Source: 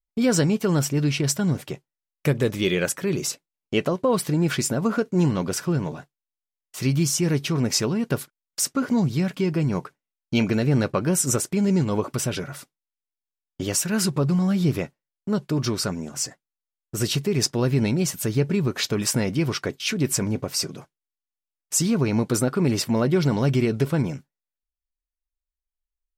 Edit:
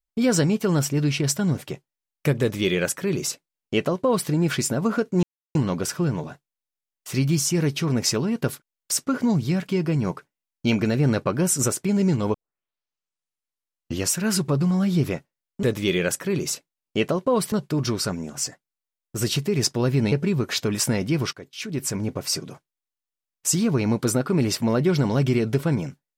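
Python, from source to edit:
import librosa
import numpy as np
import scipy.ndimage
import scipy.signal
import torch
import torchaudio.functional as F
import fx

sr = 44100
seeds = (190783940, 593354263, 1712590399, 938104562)

y = fx.edit(x, sr, fx.duplicate(start_s=2.4, length_s=1.89, to_s=15.31),
    fx.insert_silence(at_s=5.23, length_s=0.32),
    fx.tape_start(start_s=12.02, length_s=1.77),
    fx.cut(start_s=17.91, length_s=0.48),
    fx.fade_in_from(start_s=19.6, length_s=0.9, floor_db=-16.5), tone=tone)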